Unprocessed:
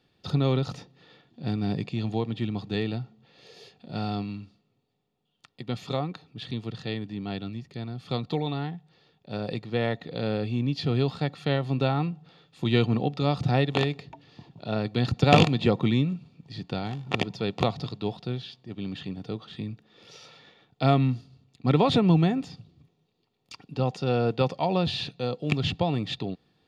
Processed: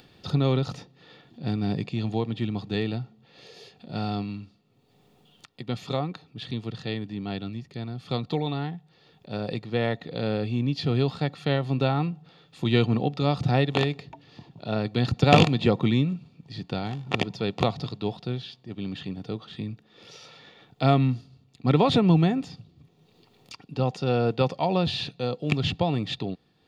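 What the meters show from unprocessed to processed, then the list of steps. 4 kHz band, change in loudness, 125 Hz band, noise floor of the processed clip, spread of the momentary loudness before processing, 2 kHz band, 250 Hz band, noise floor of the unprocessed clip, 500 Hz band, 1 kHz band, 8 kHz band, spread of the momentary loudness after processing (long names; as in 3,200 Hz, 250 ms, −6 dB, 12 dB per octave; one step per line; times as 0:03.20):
+1.0 dB, +1.0 dB, +1.0 dB, −62 dBFS, 15 LU, +1.0 dB, +1.0 dB, −72 dBFS, +1.0 dB, +1.0 dB, can't be measured, 15 LU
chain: upward compression, threshold −45 dBFS
level +1 dB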